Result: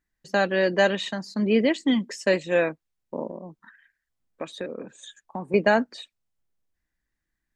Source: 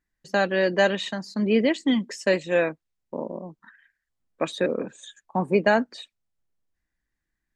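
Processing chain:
0:03.29–0:05.54: downward compressor 2.5 to 1, threshold −34 dBFS, peak gain reduction 10.5 dB

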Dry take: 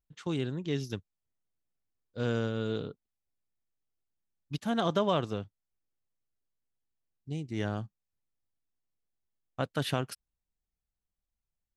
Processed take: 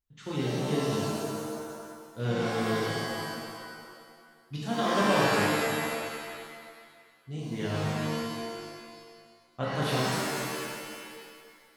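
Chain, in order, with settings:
0:04.61–0:05.02: Butterworth high-pass 180 Hz 96 dB per octave
reverb with rising layers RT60 1.9 s, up +7 semitones, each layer −2 dB, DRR −6.5 dB
level −4.5 dB

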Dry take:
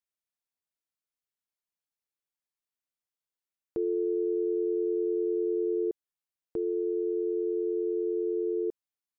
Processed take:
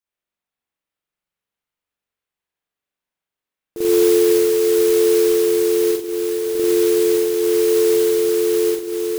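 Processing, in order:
feedback delay with all-pass diffusion 584 ms, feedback 49%, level −5.5 dB
spring reverb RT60 1 s, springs 43 ms, chirp 45 ms, DRR −8.5 dB
noise that follows the level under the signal 13 dB

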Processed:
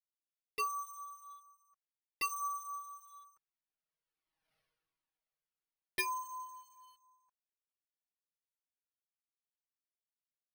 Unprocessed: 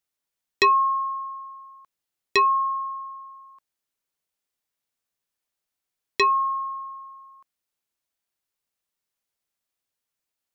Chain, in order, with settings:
source passing by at 0:04.56, 21 m/s, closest 1.7 metres
in parallel at −8.5 dB: log-companded quantiser 6 bits
on the sum: comb filter 6.3 ms, depth 76%
bad sample-rate conversion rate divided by 6×, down filtered, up hold
flanger whose copies keep moving one way falling 1.4 Hz
level +13 dB

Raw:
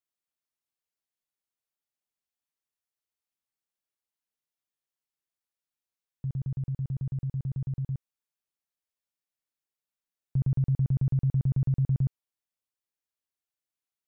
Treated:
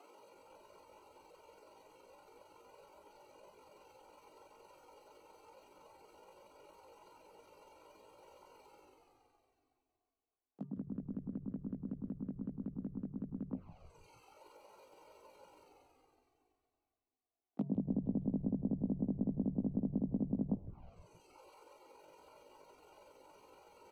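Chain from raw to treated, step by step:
adaptive Wiener filter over 25 samples
reverb reduction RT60 0.61 s
reversed playback
upward compression, threshold −38 dBFS
reversed playback
treble cut that deepens with the level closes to 580 Hz, closed at −27.5 dBFS
time stretch by overlap-add 1.7×, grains 93 ms
Chebyshev high-pass with heavy ripple 180 Hz, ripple 6 dB
echo with shifted repeats 157 ms, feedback 64%, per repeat −93 Hz, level −15 dB
flanger swept by the level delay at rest 2.7 ms, full sweep at −50 dBFS
level +16 dB

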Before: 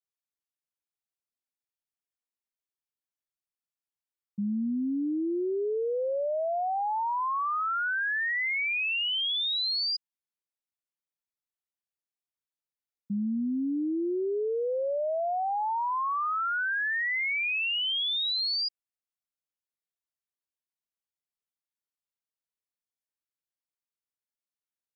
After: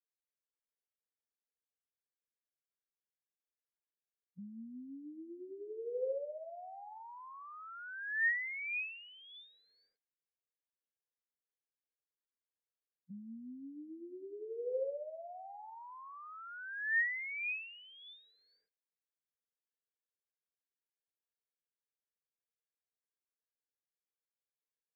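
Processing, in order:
formant resonators in series e
formants moved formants −2 semitones
level +4 dB

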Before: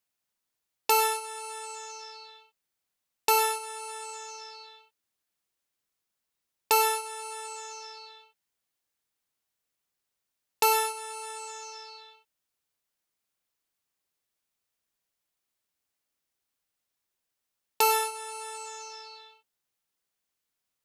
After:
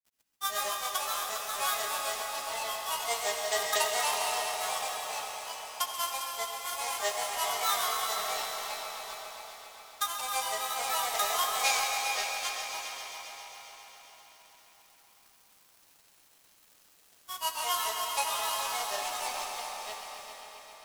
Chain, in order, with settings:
compressor on every frequency bin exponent 0.4
phase-vocoder pitch shift with formants kept −7 semitones
elliptic high-pass filter 420 Hz
high-shelf EQ 3,500 Hz +8.5 dB
in parallel at +2 dB: downward compressor, threshold −39 dBFS, peak gain reduction 20.5 dB
on the sum: granular cloud 145 ms, grains 23 per second, spray 965 ms, pitch spread up and down by 7 semitones
dead-zone distortion −37.5 dBFS
gain on a spectral selection 0:11.64–0:12.69, 1,500–7,200 Hz +8 dB
echo machine with several playback heads 134 ms, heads all three, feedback 63%, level −13 dB
on a send at −2.5 dB: convolution reverb RT60 4.5 s, pre-delay 56 ms
on the sum: level −4 dB

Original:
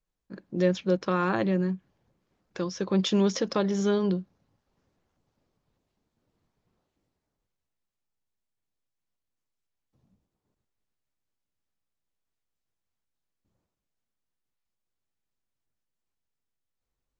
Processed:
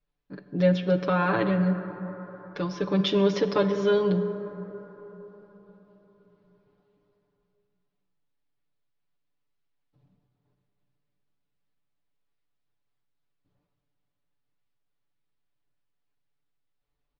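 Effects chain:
low-pass filter 4,400 Hz 24 dB per octave
comb filter 6.9 ms, depth 94%
dense smooth reverb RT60 4.4 s, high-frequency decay 0.3×, DRR 8.5 dB

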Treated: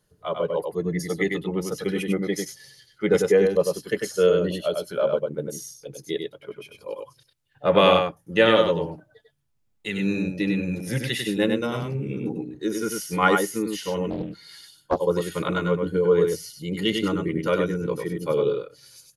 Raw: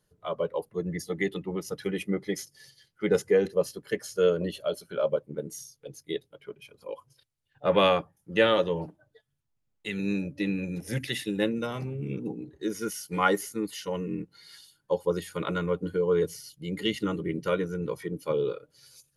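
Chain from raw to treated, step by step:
single-tap delay 98 ms −4.5 dB
0:14.10–0:15.00: highs frequency-modulated by the lows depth 0.85 ms
level +4 dB

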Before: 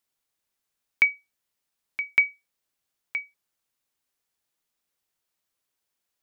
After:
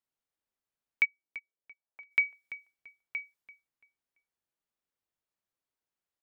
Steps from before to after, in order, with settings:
0:01.04–0:02.10: resonant band-pass 240 Hz → 920 Hz, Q 1.8
repeating echo 338 ms, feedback 30%, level −16.5 dB
one half of a high-frequency compander decoder only
level −6 dB

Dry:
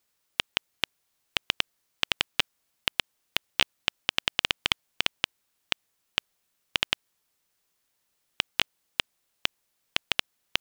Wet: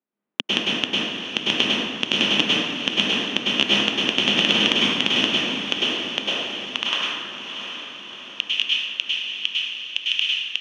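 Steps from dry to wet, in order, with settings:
adaptive Wiener filter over 9 samples
tilt shelving filter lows +6 dB, about 1,200 Hz
leveller curve on the samples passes 5
high-pass filter sweep 230 Hz → 2,700 Hz, 0:05.40–0:07.65
brickwall limiter −3.5 dBFS, peak gain reduction 7.5 dB
transistor ladder low-pass 5,600 Hz, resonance 25%
on a send: feedback delay with all-pass diffusion 692 ms, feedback 56%, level −8.5 dB
on the sum: dense smooth reverb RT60 1.6 s, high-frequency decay 0.55×, pre-delay 90 ms, DRR −6.5 dB
level +4 dB

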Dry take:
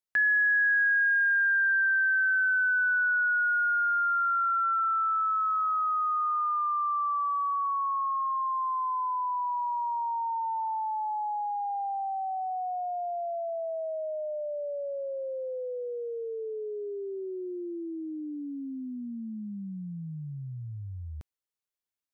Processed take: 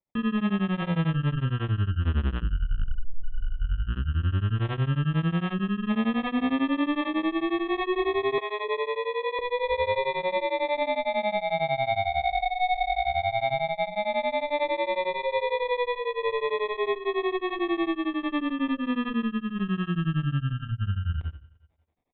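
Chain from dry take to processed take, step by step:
automatic gain control gain up to 12 dB
on a send at −4 dB: convolution reverb RT60 0.40 s, pre-delay 4 ms
on the sum: tube saturation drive 17 dB, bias 0.65
decimation without filtering 30×
0:08.38–0:09.39: Chebyshev high-pass filter 420 Hz, order 10
mains-hum notches 60/120/180/240/300/360/420/480/540 Hz
downward compressor, threshold −22 dBFS, peak gain reduction 6.5 dB
brickwall limiter −22 dBFS, peak gain reduction 6.5 dB
downsampling to 8,000 Hz
tremolo along a rectified sine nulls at 11 Hz
level +4 dB

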